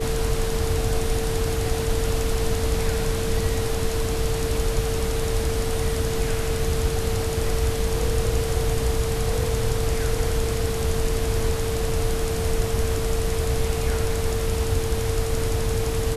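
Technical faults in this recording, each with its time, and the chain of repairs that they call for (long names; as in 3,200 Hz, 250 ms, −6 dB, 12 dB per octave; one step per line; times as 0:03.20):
whistle 450 Hz −27 dBFS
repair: notch filter 450 Hz, Q 30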